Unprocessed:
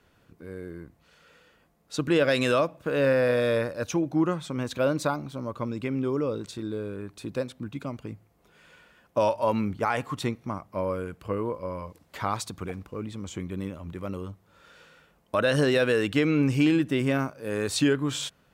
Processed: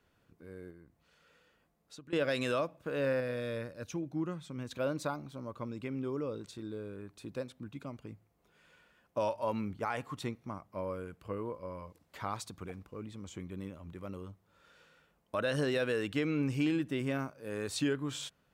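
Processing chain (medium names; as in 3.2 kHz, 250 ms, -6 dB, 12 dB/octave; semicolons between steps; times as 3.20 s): 0.70–2.13 s: compression 4:1, threshold -43 dBFS, peak gain reduction 19 dB; 3.20–4.71 s: FFT filter 180 Hz 0 dB, 820 Hz -7 dB, 2.1 kHz -3 dB; trim -9 dB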